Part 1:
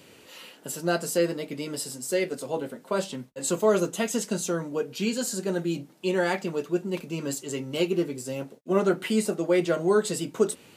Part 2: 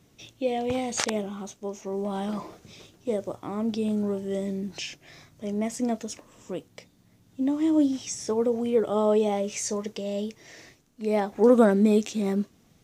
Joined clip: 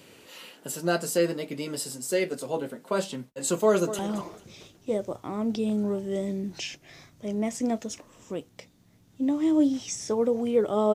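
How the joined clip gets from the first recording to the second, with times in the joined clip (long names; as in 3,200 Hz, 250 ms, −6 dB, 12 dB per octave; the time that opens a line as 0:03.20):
part 1
0:03.65–0:03.99: delay throw 220 ms, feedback 30%, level −13 dB
0:03.99: continue with part 2 from 0:02.18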